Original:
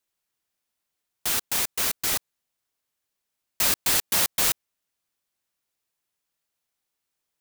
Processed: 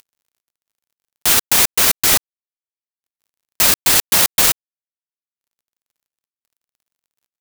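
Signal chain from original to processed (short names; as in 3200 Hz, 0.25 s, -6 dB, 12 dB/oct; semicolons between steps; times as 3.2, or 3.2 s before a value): in parallel at 0 dB: upward compressor, threshold -25 dBFS; on the sum: crossover distortion -40.5 dBFS; maximiser +9 dB; gain -1 dB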